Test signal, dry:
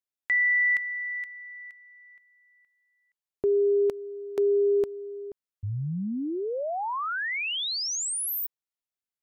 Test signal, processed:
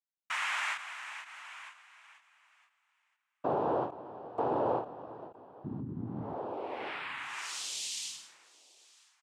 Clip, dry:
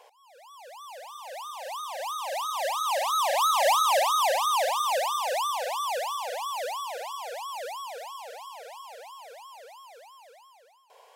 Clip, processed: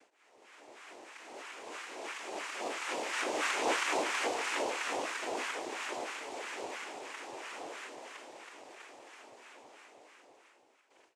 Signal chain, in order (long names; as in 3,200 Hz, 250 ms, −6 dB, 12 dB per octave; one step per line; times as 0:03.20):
repeating echo 960 ms, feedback 26%, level −23.5 dB
dynamic equaliser 1,800 Hz, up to −3 dB, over −36 dBFS, Q 0.9
cochlear-implant simulation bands 4
every ending faded ahead of time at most 150 dB per second
level −8 dB